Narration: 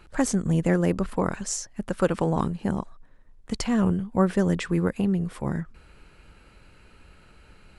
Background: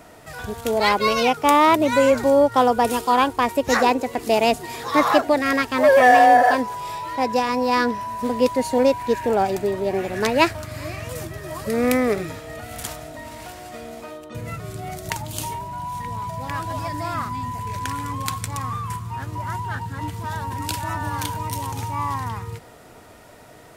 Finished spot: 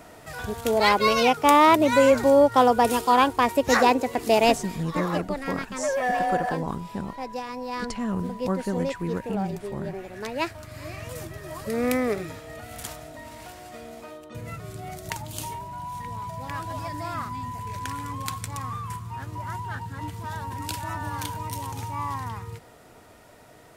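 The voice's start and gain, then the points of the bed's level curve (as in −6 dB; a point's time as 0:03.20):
4.30 s, −6.0 dB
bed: 0:04.57 −1 dB
0:04.84 −12.5 dB
0:10.26 −12.5 dB
0:11.00 −5 dB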